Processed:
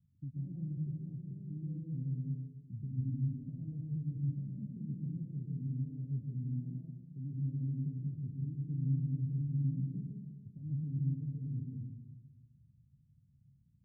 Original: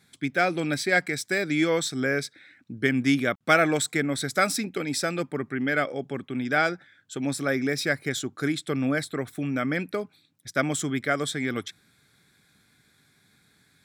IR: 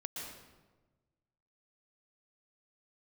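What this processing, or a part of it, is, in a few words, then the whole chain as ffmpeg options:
club heard from the street: -filter_complex "[0:a]alimiter=limit=-18.5dB:level=0:latency=1:release=124,lowpass=frequency=140:width=0.5412,lowpass=frequency=140:width=1.3066[link_01];[1:a]atrim=start_sample=2205[link_02];[link_01][link_02]afir=irnorm=-1:irlink=0,volume=5dB"

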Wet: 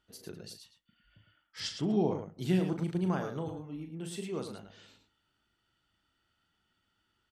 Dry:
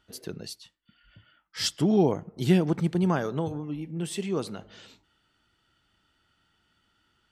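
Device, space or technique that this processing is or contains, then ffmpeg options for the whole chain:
slapback doubling: -filter_complex "[0:a]asplit=3[link_01][link_02][link_03];[link_02]adelay=38,volume=-8dB[link_04];[link_03]adelay=108,volume=-8dB[link_05];[link_01][link_04][link_05]amix=inputs=3:normalize=0,asettb=1/sr,asplit=3[link_06][link_07][link_08];[link_06]atrim=end=1.604[link_09];[link_07]atrim=start=1.6:end=2.39,asetpts=PTS-STARTPTS,afade=type=in:duration=0.004:curve=qsin,afade=type=out:start_time=0.786:duration=0.004:curve=qsin,lowpass=5900[link_10];[link_08]atrim=start=2.386[link_11];[link_09][link_10]acrossfade=duration=0.004:curve1=hsin:curve2=qsin[link_12];[link_12][link_11]acrossfade=duration=0.004:curve1=qsin:curve2=hsin,volume=-8.5dB"

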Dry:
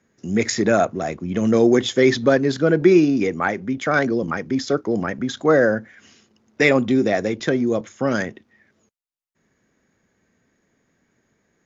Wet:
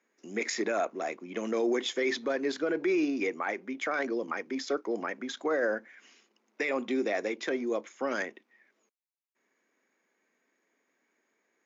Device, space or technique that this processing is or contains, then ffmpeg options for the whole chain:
laptop speaker: -af "highpass=frequency=280:width=0.5412,highpass=frequency=280:width=1.3066,equalizer=frequency=1000:width_type=o:width=0.57:gain=4,equalizer=frequency=2300:width_type=o:width=0.53:gain=6.5,alimiter=limit=-11.5dB:level=0:latency=1:release=29,volume=-9dB"

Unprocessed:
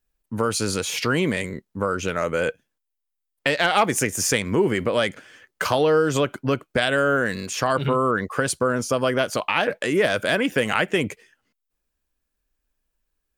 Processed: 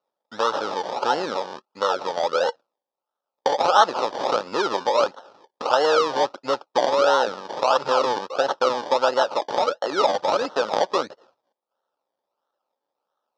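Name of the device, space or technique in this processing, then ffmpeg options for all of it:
circuit-bent sampling toy: -af "acrusher=samples=26:mix=1:aa=0.000001:lfo=1:lforange=15.6:lforate=1.5,highpass=420,equalizer=frequency=550:width_type=q:width=4:gain=9,equalizer=frequency=860:width_type=q:width=4:gain=9,equalizer=frequency=1300:width_type=q:width=4:gain=10,equalizer=frequency=2100:width_type=q:width=4:gain=-9,equalizer=frequency=3700:width_type=q:width=4:gain=4,equalizer=frequency=5300:width_type=q:width=4:gain=7,lowpass=frequency=5500:width=0.5412,lowpass=frequency=5500:width=1.3066,volume=-3dB"

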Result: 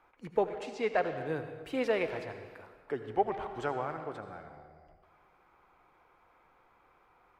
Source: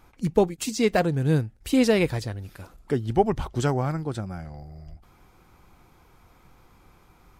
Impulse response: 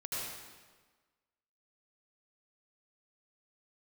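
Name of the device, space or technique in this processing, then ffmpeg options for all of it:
saturated reverb return: -filter_complex "[0:a]asettb=1/sr,asplit=3[link_01][link_02][link_03];[link_01]atrim=end=0.474[link_04];[link_02]atrim=start=0.47:end=1.13,asetpts=PTS-STARTPTS,afade=type=in:duration=0.004:curve=qsin,afade=type=out:start_time=0.656:duration=0.004:curve=qsin,lowpass=7300[link_05];[link_03]atrim=start=1.126[link_06];[link_04][link_05]acrossfade=duration=0.004:curve1=hsin:curve2=qsin[link_07];[link_07][link_06]acrossfade=duration=0.004:curve1=qsin:curve2=hsin,acrossover=split=400 2700:gain=0.126 1 0.112[link_08][link_09][link_10];[link_08][link_09][link_10]amix=inputs=3:normalize=0,asplit=2[link_11][link_12];[1:a]atrim=start_sample=2205[link_13];[link_12][link_13]afir=irnorm=-1:irlink=0,asoftclip=type=tanh:threshold=-22dB,volume=-7dB[link_14];[link_11][link_14]amix=inputs=2:normalize=0,volume=-6dB"

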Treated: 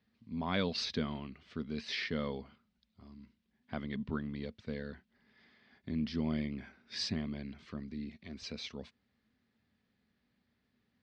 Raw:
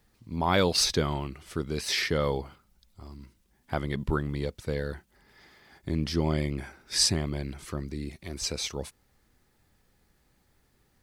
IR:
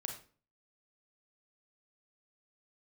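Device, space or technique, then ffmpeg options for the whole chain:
guitar cabinet: -af "highpass=100,equalizer=frequency=140:width_type=q:width=4:gain=-5,equalizer=frequency=230:width_type=q:width=4:gain=10,equalizer=frequency=340:width_type=q:width=4:gain=-8,equalizer=frequency=530:width_type=q:width=4:gain=-4,equalizer=frequency=850:width_type=q:width=4:gain=-8,equalizer=frequency=1300:width_type=q:width=4:gain=-4,lowpass=frequency=4400:width=0.5412,lowpass=frequency=4400:width=1.3066,volume=-7.5dB"

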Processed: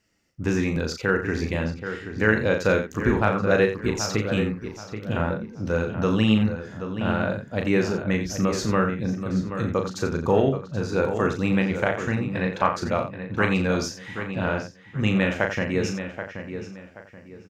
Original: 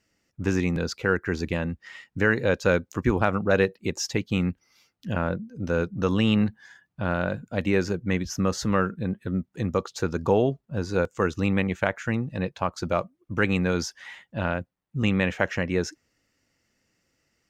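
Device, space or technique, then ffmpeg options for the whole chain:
slapback doubling: -filter_complex "[0:a]asettb=1/sr,asplit=3[link_01][link_02][link_03];[link_01]atrim=end=12.294[link_04];[link_02]atrim=start=12.29:end=12.78,asetpts=PTS-STARTPTS,afade=type=in:duration=0.004:curve=qsin,afade=type=out:start_time=0.486:duration=0.004:curve=qsin,equalizer=frequency=1500:width=0.81:gain=8[link_05];[link_03]atrim=start=12.776[link_06];[link_04][link_05]acrossfade=duration=0.004:curve1=hsin:curve2=qsin[link_07];[link_07][link_06]acrossfade=duration=0.004:curve1=qsin:curve2=hsin,asplit=3[link_08][link_09][link_10];[link_09]adelay=37,volume=-5.5dB[link_11];[link_10]adelay=87,volume=-10.5dB[link_12];[link_08][link_11][link_12]amix=inputs=3:normalize=0,asplit=2[link_13][link_14];[link_14]adelay=779,lowpass=frequency=2900:poles=1,volume=-9dB,asplit=2[link_15][link_16];[link_16]adelay=779,lowpass=frequency=2900:poles=1,volume=0.31,asplit=2[link_17][link_18];[link_18]adelay=779,lowpass=frequency=2900:poles=1,volume=0.31,asplit=2[link_19][link_20];[link_20]adelay=779,lowpass=frequency=2900:poles=1,volume=0.31[link_21];[link_13][link_15][link_17][link_19][link_21]amix=inputs=5:normalize=0"

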